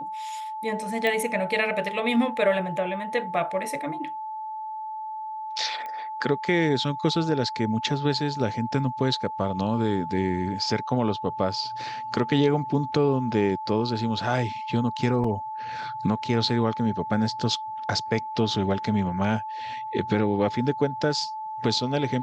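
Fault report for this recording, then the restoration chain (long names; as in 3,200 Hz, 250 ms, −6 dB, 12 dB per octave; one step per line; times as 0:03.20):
whistle 870 Hz −31 dBFS
0:01.07: click −14 dBFS
0:05.86: click −23 dBFS
0:15.24: drop-out 4 ms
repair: click removal
notch filter 870 Hz, Q 30
repair the gap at 0:15.24, 4 ms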